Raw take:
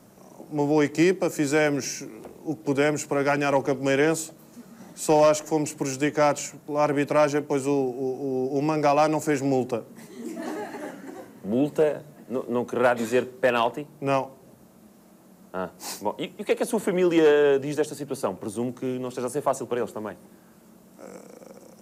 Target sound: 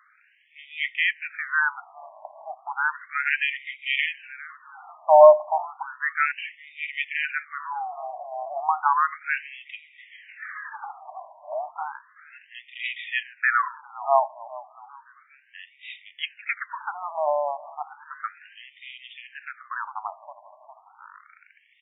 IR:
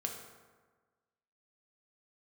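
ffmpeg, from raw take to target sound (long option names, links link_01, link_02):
-filter_complex "[0:a]asplit=6[link_01][link_02][link_03][link_04][link_05][link_06];[link_02]adelay=406,afreqshift=-55,volume=-19dB[link_07];[link_03]adelay=812,afreqshift=-110,volume=-23.6dB[link_08];[link_04]adelay=1218,afreqshift=-165,volume=-28.2dB[link_09];[link_05]adelay=1624,afreqshift=-220,volume=-32.7dB[link_10];[link_06]adelay=2030,afreqshift=-275,volume=-37.3dB[link_11];[link_01][link_07][link_08][link_09][link_10][link_11]amix=inputs=6:normalize=0,afftfilt=real='re*between(b*sr/1024,790*pow(2700/790,0.5+0.5*sin(2*PI*0.33*pts/sr))/1.41,790*pow(2700/790,0.5+0.5*sin(2*PI*0.33*pts/sr))*1.41)':imag='im*between(b*sr/1024,790*pow(2700/790,0.5+0.5*sin(2*PI*0.33*pts/sr))/1.41,790*pow(2700/790,0.5+0.5*sin(2*PI*0.33*pts/sr))*1.41)':win_size=1024:overlap=0.75,volume=8.5dB"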